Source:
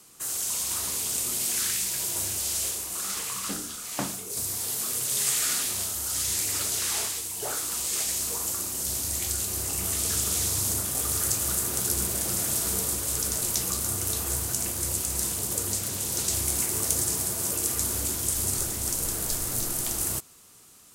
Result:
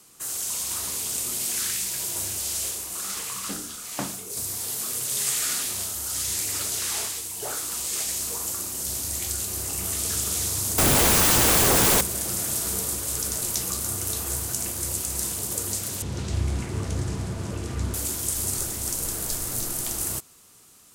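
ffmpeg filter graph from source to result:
-filter_complex "[0:a]asettb=1/sr,asplit=3[s0][s1][s2];[s0]atrim=end=10.784[s3];[s1]atrim=start=10.78:end=12.01,asetpts=PTS-STARTPTS,afade=t=in:d=0.004:c=qsin,afade=t=out:st=1.226:d=0.004:c=qsin,highpass=f=41:p=1,tiltshelf=f=1300:g=7,aeval=exprs='0.168*sin(PI/2*7.08*val(0)/0.168)':c=same[s4];[s2]atrim=start=12.006[s5];[s3][s4]acrossfade=d=0.004:c1=hsin:c2=qsin[s6];[s6][s5]acrossfade=d=0.004:c1=qsin:c2=hsin,asettb=1/sr,asplit=3[s7][s8][s9];[s7]atrim=end=16.024[s10];[s8]atrim=start=16.02:end=17.94,asetpts=PTS-STARTPTS,afade=t=in:d=0.004:c=qsin,afade=t=out:st=1.916:d=0.004:c=qsin,lowpass=6700,bass=f=250:g=11,treble=f=4000:g=-12[s11];[s9]atrim=start=17.936[s12];[s10][s11]acrossfade=d=0.004:c1=hsin:c2=qsin[s13];[s13][s12]acrossfade=d=0.004:c1=qsin:c2=hsin"

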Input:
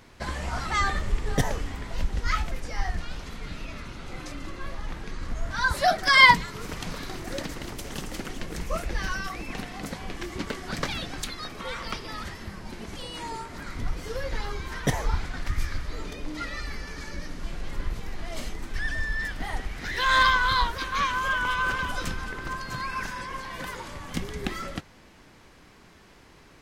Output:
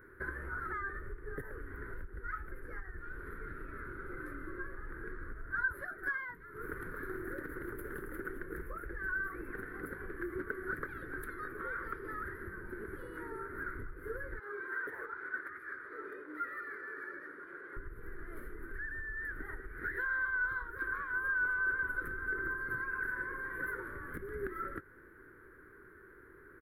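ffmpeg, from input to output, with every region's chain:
-filter_complex "[0:a]asettb=1/sr,asplit=3[s0][s1][s2];[s0]atrim=end=14.394[s3];[s1]atrim=start=14.39:end=17.77,asetpts=PTS-STARTPTS,afade=t=in:d=0.004:c=qsin,afade=t=out:st=3.376:d=0.004:c=qsin,acompressor=threshold=0.0398:ratio=3:attack=3.2:release=140:knee=1:detection=peak,highpass=430,lowpass=6900,volume=50.1,asoftclip=hard,volume=0.02[s4];[s2]atrim=start=17.766[s5];[s3][s4]acrossfade=d=0.004:c1=hsin:c2=qsin[s6];[s6][s5]acrossfade=d=0.004:c1=qsin:c2=hsin,highshelf=f=4400:t=q:w=1.5:g=-10,acompressor=threshold=0.0251:ratio=10,firequalizer=gain_entry='entry(110,0);entry(200,-7);entry(380,12);entry(700,-16);entry(1500,14);entry(2700,-27);entry(7000,-19);entry(11000,13)':delay=0.05:min_phase=1,volume=0.422"

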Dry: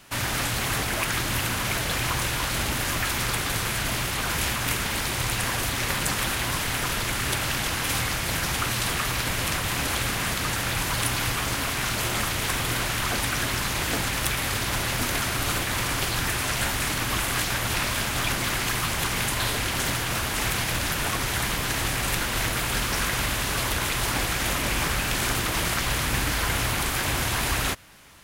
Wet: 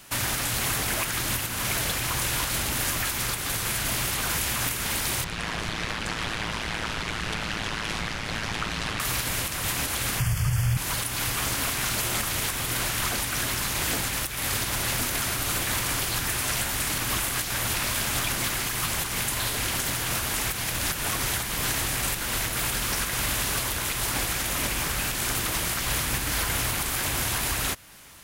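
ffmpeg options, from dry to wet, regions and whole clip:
-filter_complex "[0:a]asettb=1/sr,asplit=3[s0][s1][s2];[s0]atrim=end=5.244[s3];[s1]atrim=start=5.24:end=9,asetpts=PTS-STARTPTS,afade=t=in:d=0.004:c=qsin,afade=t=out:st=3.756:d=0.004:c=qsin,lowpass=4100,aeval=exprs='val(0)*sin(2*PI*55*n/s)':c=same[s4];[s2]atrim=start=8.996[s5];[s3][s4]acrossfade=d=0.004:c1=hsin:c2=qsin[s6];[s6][s5]acrossfade=d=0.004:c1=qsin:c2=hsin,asettb=1/sr,asplit=3[s7][s8][s9];[s7]atrim=end=10.194[s10];[s8]atrim=start=10.19:end=10.77,asetpts=PTS-STARTPTS,afade=t=in:d=0.004:c=qsin,afade=t=out:st=0.576:d=0.004:c=qsin,asuperstop=centerf=3900:order=4:qfactor=3.8,lowshelf=f=180:t=q:w=3:g=13.5[s11];[s9]atrim=start=10.766[s12];[s10][s11]acrossfade=d=0.004:c1=hsin:c2=qsin[s13];[s13][s12]acrossfade=d=0.004:c1=qsin:c2=hsin,highshelf=f=6100:g=8,alimiter=limit=0.158:level=0:latency=1:release=289"

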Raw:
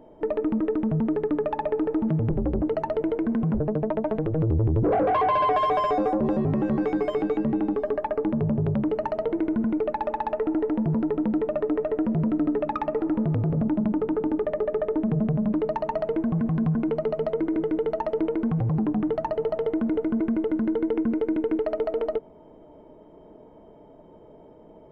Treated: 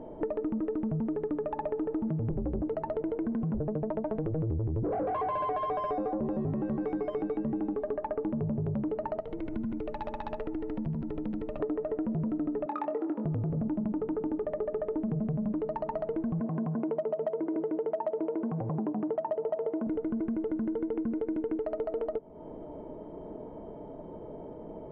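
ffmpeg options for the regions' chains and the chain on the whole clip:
-filter_complex "[0:a]asettb=1/sr,asplit=3[s0][s1][s2];[s0]atrim=end=9.204[s3];[s1]atrim=start=9.2:end=11.6,asetpts=PTS-STARTPTS,afade=t=in:d=0.004:c=qsin,afade=t=out:st=2.396:d=0.004:c=qsin,highshelf=f=2700:g=8,acrossover=split=140|3000[s4][s5][s6];[s5]acompressor=threshold=0.00708:ratio=2.5:attack=3.2:release=140:knee=2.83:detection=peak[s7];[s4][s7][s6]amix=inputs=3:normalize=0,aecho=1:1:75:0.562,atrim=end_sample=105840[s8];[s2]atrim=start=11.596[s9];[s3][s8]acrossfade=d=0.004:c1=hsin:c2=qsin[s10];[s10][s9]acrossfade=d=0.004:c1=qsin:c2=hsin,asettb=1/sr,asplit=3[s11][s12][s13];[s11]atrim=end=12.664[s14];[s12]atrim=start=12.66:end=13.25,asetpts=PTS-STARTPTS,afade=t=in:d=0.004:c=qsin,afade=t=out:st=0.586:d=0.004:c=qsin,highpass=f=250:w=0.5412,highpass=f=250:w=1.3066,asplit=2[s15][s16];[s16]adelay=24,volume=0.422[s17];[s15][s17]amix=inputs=2:normalize=0,atrim=end_sample=26019[s18];[s13]atrim=start=13.246[s19];[s14][s18]acrossfade=d=0.004:c1=hsin:c2=qsin[s20];[s20][s19]acrossfade=d=0.004:c1=qsin:c2=hsin,asettb=1/sr,asplit=3[s21][s22][s23];[s21]atrim=end=16.404[s24];[s22]atrim=start=16.4:end=19.87,asetpts=PTS-STARTPTS,afade=t=in:d=0.004:c=qsin,afade=t=out:st=3.466:d=0.004:c=qsin,highpass=180,equalizer=f=390:t=q:w=4:g=4,equalizer=f=620:t=q:w=4:g=8,equalizer=f=960:t=q:w=4:g=6,lowpass=f=3100:w=0.5412,lowpass=f=3100:w=1.3066,asoftclip=type=hard:threshold=0.237[s25];[s23]atrim=start=19.866[s26];[s24][s25]acrossfade=d=0.004:c1=hsin:c2=qsin[s27];[s27][s26]acrossfade=d=0.004:c1=qsin:c2=hsin,lowpass=f=1100:p=1,acompressor=threshold=0.0112:ratio=4,volume=2.24"

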